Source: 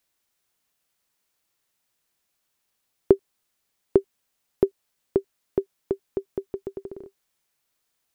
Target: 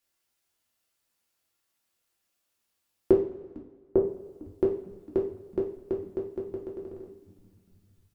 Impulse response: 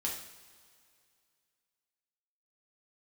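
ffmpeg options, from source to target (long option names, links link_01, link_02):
-filter_complex "[0:a]asettb=1/sr,asplit=3[link_01][link_02][link_03];[link_01]atrim=end=3.114[link_04];[link_02]atrim=start=3.11:end=3.96,asetpts=PTS-STARTPTS,afade=type=in:duration=0.004:curve=qsin,afade=type=out:start_time=0.846:duration=0.004:curve=qsin,lowpass=1200[link_05];[link_03]atrim=start=3.956[link_06];[link_04][link_05]acrossfade=duration=0.004:curve1=hsin:curve2=qsin[link_07];[link_07][link_06]acrossfade=duration=0.004:curve1=qsin:curve2=hsin,asplit=6[link_08][link_09][link_10][link_11][link_12][link_13];[link_09]adelay=452,afreqshift=-100,volume=-22dB[link_14];[link_10]adelay=904,afreqshift=-200,volume=-26.4dB[link_15];[link_11]adelay=1356,afreqshift=-300,volume=-30.9dB[link_16];[link_12]adelay=1808,afreqshift=-400,volume=-35.3dB[link_17];[link_13]adelay=2260,afreqshift=-500,volume=-39.7dB[link_18];[link_08][link_14][link_15][link_16][link_17][link_18]amix=inputs=6:normalize=0[link_19];[1:a]atrim=start_sample=2205,asetrate=66150,aresample=44100[link_20];[link_19][link_20]afir=irnorm=-1:irlink=0,volume=-1.5dB"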